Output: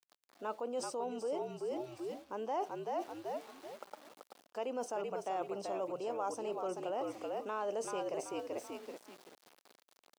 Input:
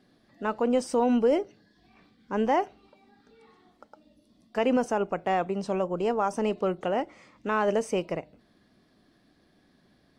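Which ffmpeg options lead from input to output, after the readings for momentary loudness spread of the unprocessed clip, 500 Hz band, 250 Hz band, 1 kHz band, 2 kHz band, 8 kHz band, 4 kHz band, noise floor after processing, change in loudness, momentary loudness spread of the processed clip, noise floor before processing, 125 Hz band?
11 LU, −10.0 dB, −16.0 dB, −9.5 dB, −14.5 dB, −3.5 dB, −8.5 dB, −77 dBFS, −12.0 dB, 13 LU, −65 dBFS, −16.5 dB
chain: -filter_complex "[0:a]equalizer=frequency=1900:width=1.8:gain=-11.5,asplit=5[link_01][link_02][link_03][link_04][link_05];[link_02]adelay=383,afreqshift=-58,volume=-6dB[link_06];[link_03]adelay=766,afreqshift=-116,volume=-16.2dB[link_07];[link_04]adelay=1149,afreqshift=-174,volume=-26.3dB[link_08];[link_05]adelay=1532,afreqshift=-232,volume=-36.5dB[link_09];[link_01][link_06][link_07][link_08][link_09]amix=inputs=5:normalize=0,asplit=2[link_10][link_11];[link_11]alimiter=level_in=0.5dB:limit=-24dB:level=0:latency=1,volume=-0.5dB,volume=3dB[link_12];[link_10][link_12]amix=inputs=2:normalize=0,aeval=exprs='val(0)*gte(abs(val(0)),0.00422)':channel_layout=same,areverse,acompressor=threshold=-30dB:ratio=5,areverse,highpass=430,volume=-3dB"

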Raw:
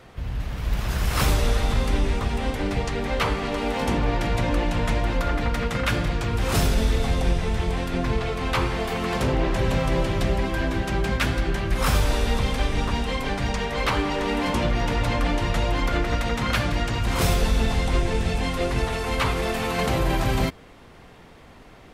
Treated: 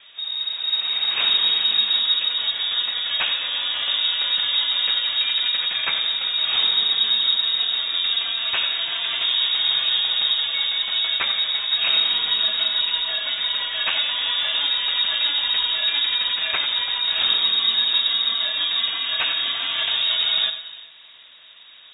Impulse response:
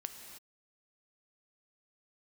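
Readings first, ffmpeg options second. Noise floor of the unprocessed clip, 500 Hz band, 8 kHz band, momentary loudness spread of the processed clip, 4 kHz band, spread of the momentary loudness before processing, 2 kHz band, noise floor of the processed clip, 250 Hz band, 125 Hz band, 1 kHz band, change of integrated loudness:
−47 dBFS, −16.5 dB, below −40 dB, 5 LU, +17.0 dB, 4 LU, +2.0 dB, −46 dBFS, below −20 dB, below −30 dB, −7.5 dB, +5.5 dB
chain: -filter_complex "[0:a]asplit=2[link_01][link_02];[1:a]atrim=start_sample=2205,adelay=92[link_03];[link_02][link_03]afir=irnorm=-1:irlink=0,volume=-7dB[link_04];[link_01][link_04]amix=inputs=2:normalize=0,lowpass=frequency=3200:width_type=q:width=0.5098,lowpass=frequency=3200:width_type=q:width=0.6013,lowpass=frequency=3200:width_type=q:width=0.9,lowpass=frequency=3200:width_type=q:width=2.563,afreqshift=-3800"

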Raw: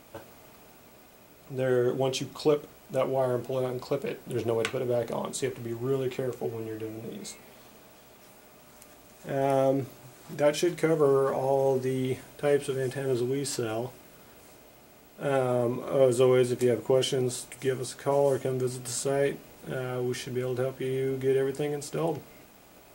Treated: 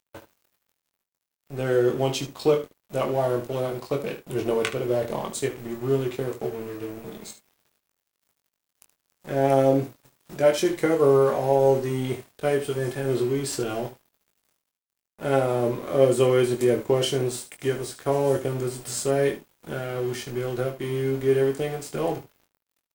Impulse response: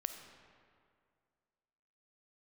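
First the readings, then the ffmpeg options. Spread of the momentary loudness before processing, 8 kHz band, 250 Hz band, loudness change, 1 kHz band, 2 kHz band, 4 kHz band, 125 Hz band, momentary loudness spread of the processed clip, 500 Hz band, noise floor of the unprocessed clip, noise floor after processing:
11 LU, +2.5 dB, +3.5 dB, +3.5 dB, +4.0 dB, +3.5 dB, +3.0 dB, +4.0 dB, 12 LU, +3.5 dB, −54 dBFS, −84 dBFS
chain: -af "aeval=exprs='sgn(val(0))*max(abs(val(0))-0.00562,0)':channel_layout=same,aecho=1:1:22|74:0.531|0.251,volume=3dB"

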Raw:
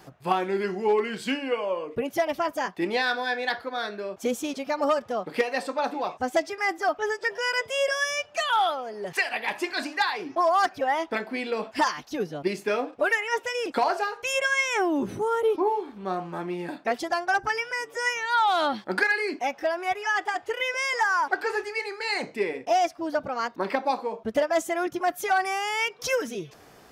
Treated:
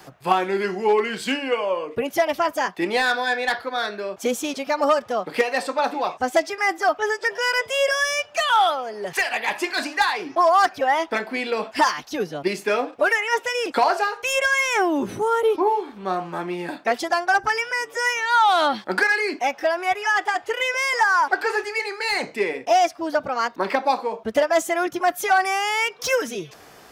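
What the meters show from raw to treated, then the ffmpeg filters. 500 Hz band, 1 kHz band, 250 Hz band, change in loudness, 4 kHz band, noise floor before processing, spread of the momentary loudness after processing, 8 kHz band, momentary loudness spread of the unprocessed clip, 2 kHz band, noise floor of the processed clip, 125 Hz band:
+4.0 dB, +5.5 dB, +2.5 dB, +5.0 dB, +5.0 dB, −52 dBFS, 7 LU, +5.5 dB, 7 LU, +5.0 dB, −47 dBFS, +1.5 dB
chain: -filter_complex "[0:a]lowshelf=frequency=490:gain=-6,acrossover=split=120|1400[link_01][link_02][link_03];[link_03]asoftclip=type=tanh:threshold=-26.5dB[link_04];[link_01][link_02][link_04]amix=inputs=3:normalize=0,volume=7dB"

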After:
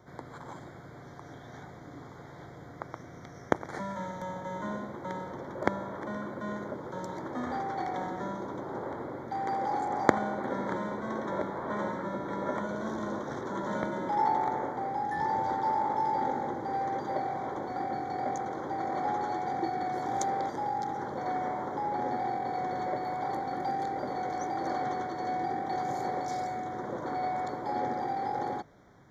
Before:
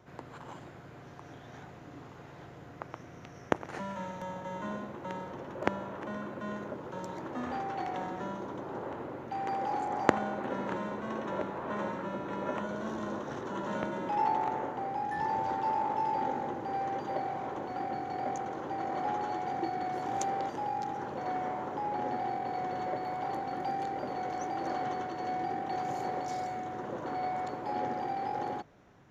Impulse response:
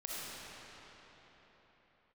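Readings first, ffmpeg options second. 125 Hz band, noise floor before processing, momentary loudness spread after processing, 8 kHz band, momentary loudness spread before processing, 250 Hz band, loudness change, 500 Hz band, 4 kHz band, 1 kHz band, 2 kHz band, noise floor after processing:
+2.0 dB, −50 dBFS, 15 LU, can't be measured, 15 LU, +2.0 dB, +2.0 dB, +2.0 dB, 0.0 dB, +2.0 dB, +2.0 dB, −48 dBFS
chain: -af "asuperstop=centerf=2700:order=12:qfactor=3.1,volume=2dB"

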